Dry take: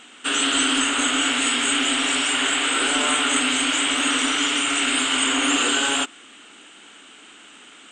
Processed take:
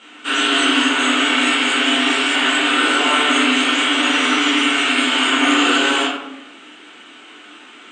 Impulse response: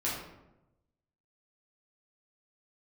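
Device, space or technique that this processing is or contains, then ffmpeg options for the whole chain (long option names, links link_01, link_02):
supermarket ceiling speaker: -filter_complex "[0:a]highpass=220,lowpass=5300[link_01];[1:a]atrim=start_sample=2205[link_02];[link_01][link_02]afir=irnorm=-1:irlink=0"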